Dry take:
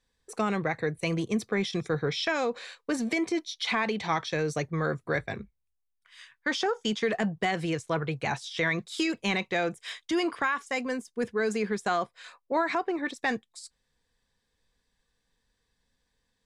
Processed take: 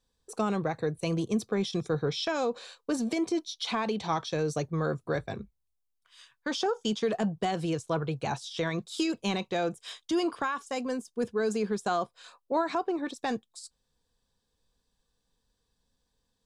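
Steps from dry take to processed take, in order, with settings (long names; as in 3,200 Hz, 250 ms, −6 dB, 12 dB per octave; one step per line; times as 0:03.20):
parametric band 2,000 Hz −13 dB 0.62 octaves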